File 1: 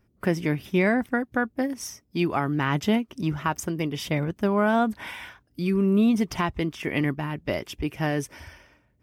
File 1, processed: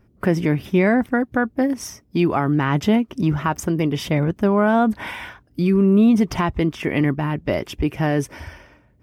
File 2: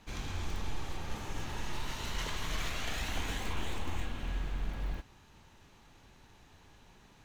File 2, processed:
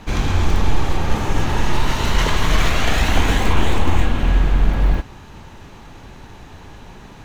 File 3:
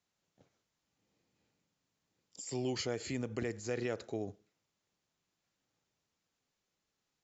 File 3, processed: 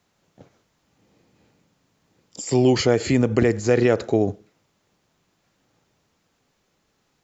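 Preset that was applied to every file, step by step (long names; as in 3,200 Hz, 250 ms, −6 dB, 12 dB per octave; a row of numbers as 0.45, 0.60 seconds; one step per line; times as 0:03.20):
high-shelf EQ 2,100 Hz −7.5 dB
in parallel at +1 dB: brickwall limiter −22.5 dBFS
on the sum: loudness normalisation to −20 LKFS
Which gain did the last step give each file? +3.0, +14.0, +13.0 decibels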